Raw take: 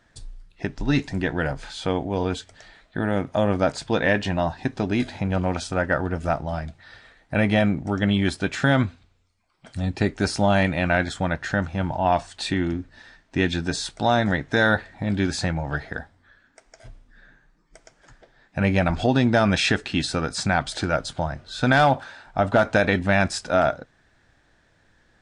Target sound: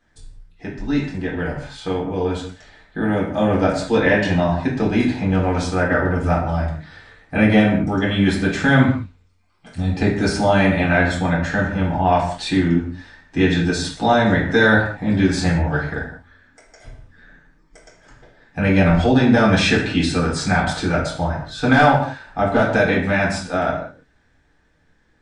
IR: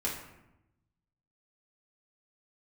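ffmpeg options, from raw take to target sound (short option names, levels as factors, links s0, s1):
-filter_complex "[0:a]dynaudnorm=f=420:g=13:m=3.76[s0];[1:a]atrim=start_sample=2205,afade=t=out:st=0.26:d=0.01,atrim=end_sample=11907[s1];[s0][s1]afir=irnorm=-1:irlink=0,volume=0.473"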